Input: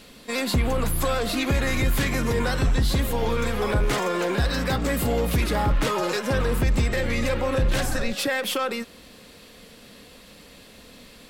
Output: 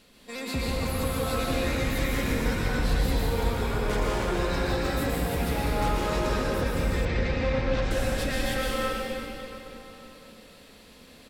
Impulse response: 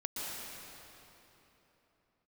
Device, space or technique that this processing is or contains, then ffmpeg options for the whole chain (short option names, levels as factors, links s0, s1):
cave: -filter_complex "[0:a]aecho=1:1:327:0.282[s0];[1:a]atrim=start_sample=2205[s1];[s0][s1]afir=irnorm=-1:irlink=0,asettb=1/sr,asplit=3[s2][s3][s4];[s2]atrim=end=7.054[s5];[s3]atrim=start=7.05:end=7.91,asetpts=PTS-STARTPTS,afade=t=in:d=0.004:c=qsin,afade=t=out:st=0.856:d=0.004:c=qsin,lowpass=f=5600:w=0.5412,lowpass=f=5600:w=1.3066[s6];[s4]atrim=start=7.906[s7];[s5][s6]acrossfade=d=0.004:c1=hsin:c2=qsin[s8];[s8][s7]acrossfade=d=0.004:c1=qsin:c2=hsin,volume=0.447"